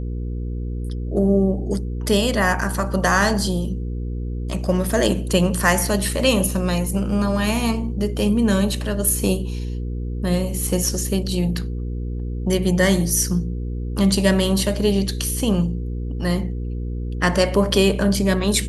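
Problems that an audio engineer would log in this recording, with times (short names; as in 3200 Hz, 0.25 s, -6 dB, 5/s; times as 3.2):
hum 60 Hz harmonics 8 -26 dBFS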